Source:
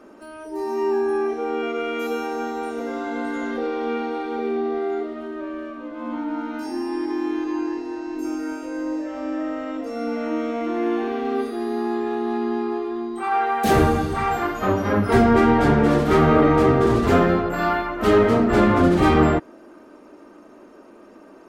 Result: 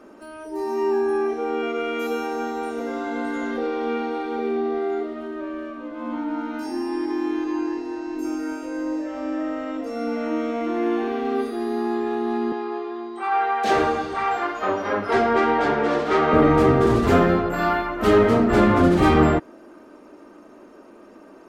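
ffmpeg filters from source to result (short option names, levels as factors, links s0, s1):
-filter_complex "[0:a]asettb=1/sr,asplit=3[s0][s1][s2];[s0]atrim=end=12.524[s3];[s1]atrim=start=12.52:end=16.33,asetpts=PTS-STARTPTS,afade=t=in:d=0.004:c=qsin,afade=t=out:st=3.806:d=0.004:c=qsin,acrossover=split=330 6800:gain=0.141 1 0.1[s4][s5][s6];[s4][s5][s6]amix=inputs=3:normalize=0[s7];[s2]atrim=start=16.326[s8];[s3][s7]acrossfade=d=0.004:c1=hsin:c2=qsin[s9];[s9][s8]acrossfade=d=0.004:c1=qsin:c2=hsin"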